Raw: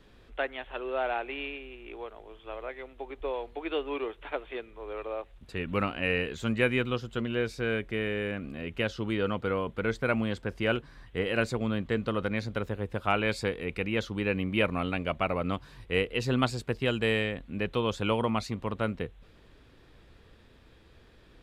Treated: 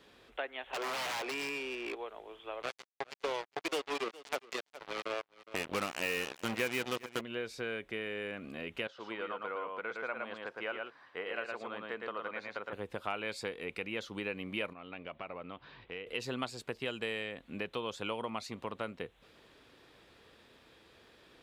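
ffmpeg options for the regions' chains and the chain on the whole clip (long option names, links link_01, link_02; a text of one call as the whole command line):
ffmpeg -i in.wav -filter_complex "[0:a]asettb=1/sr,asplit=3[link_01][link_02][link_03];[link_01]atrim=end=0.734[link_04];[link_02]atrim=start=0.73:end=1.95,asetpts=PTS-STARTPTS,afade=type=in:duration=0.004:curve=qsin,afade=type=out:start_time=1.216:duration=0.004:curve=qsin,lowshelf=frequency=390:gain=6.5,aeval=exprs='(mod(23.7*val(0)+1,2)-1)/23.7':channel_layout=same,asplit=2[link_05][link_06];[link_06]highpass=frequency=720:poles=1,volume=22dB,asoftclip=type=tanh:threshold=-27dB[link_07];[link_05][link_07]amix=inputs=2:normalize=0,lowpass=frequency=3200:poles=1,volume=-6dB[link_08];[link_03]atrim=start=1.946[link_09];[link_04][link_08]acrossfade=duration=0.004:curve1=hsin:curve2=qsin[link_10];[link_10][link_09]acrossfade=duration=0.004:curve1=qsin:curve2=hsin,asettb=1/sr,asplit=3[link_11][link_12][link_13];[link_11]atrim=end=2.624[link_14];[link_12]atrim=start=2.62:end=7.21,asetpts=PTS-STARTPTS,afade=type=in:duration=0.004:curve=qsin,afade=type=out:start_time=4.586:duration=0.004:curve=qsin,acontrast=81,acrusher=bits=3:mix=0:aa=0.5,aecho=1:1:412:0.0708,atrim=end_sample=202419[link_15];[link_13]atrim=start=7.206[link_16];[link_14][link_15]acrossfade=duration=0.004:curve1=hsin:curve2=qsin[link_17];[link_17][link_16]acrossfade=duration=0.004:curve1=qsin:curve2=hsin,asettb=1/sr,asplit=3[link_18][link_19][link_20];[link_18]atrim=end=8.874[link_21];[link_19]atrim=start=8.87:end=12.73,asetpts=PTS-STARTPTS,afade=type=in:duration=0.004:curve=qsin,afade=type=out:start_time=3.856:duration=0.004:curve=qsin,bandpass=frequency=1100:width_type=q:width=0.87,aecho=1:1:112:0.631,atrim=end_sample=170226[link_22];[link_20]atrim=start=12.726[link_23];[link_21][link_22]acrossfade=duration=0.004:curve1=hsin:curve2=qsin[link_24];[link_24][link_23]acrossfade=duration=0.004:curve1=qsin:curve2=hsin,asettb=1/sr,asplit=3[link_25][link_26][link_27];[link_25]atrim=end=14.734[link_28];[link_26]atrim=start=14.73:end=16.07,asetpts=PTS-STARTPTS,afade=type=in:duration=0.004:curve=qsin,afade=type=out:start_time=1.336:duration=0.004:curve=qsin,lowpass=frequency=3700:width=0.5412,lowpass=frequency=3700:width=1.3066,acompressor=threshold=-42dB:ratio=3:attack=3.2:release=140:knee=1:detection=peak[link_29];[link_27]atrim=start=16.066[link_30];[link_28][link_29]acrossfade=duration=0.004:curve1=hsin:curve2=qsin[link_31];[link_31][link_30]acrossfade=duration=0.004:curve1=qsin:curve2=hsin,highpass=frequency=490:poles=1,equalizer=frequency=1600:width=1.5:gain=-2,acompressor=threshold=-40dB:ratio=2.5,volume=2.5dB" out.wav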